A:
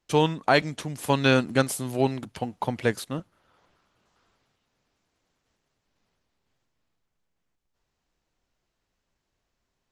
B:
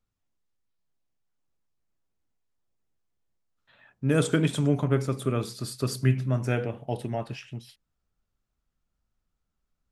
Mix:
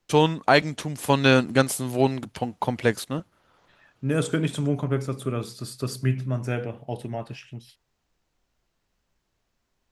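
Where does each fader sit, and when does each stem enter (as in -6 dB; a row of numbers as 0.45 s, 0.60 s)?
+2.5 dB, -1.0 dB; 0.00 s, 0.00 s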